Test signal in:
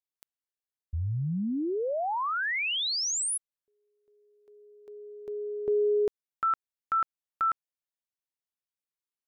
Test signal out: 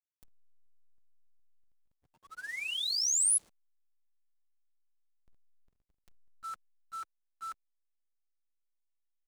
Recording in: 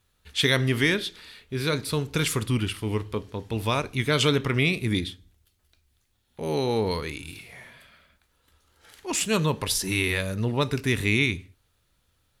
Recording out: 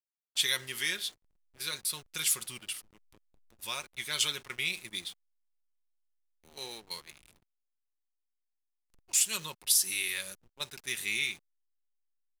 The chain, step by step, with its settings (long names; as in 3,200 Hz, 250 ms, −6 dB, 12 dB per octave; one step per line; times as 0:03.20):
noise in a band 3,100–10,000 Hz −56 dBFS
first-order pre-emphasis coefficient 0.97
comb filter 5.5 ms, depth 48%
noise gate −42 dBFS, range −11 dB
slack as between gear wheels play −45 dBFS
level +1.5 dB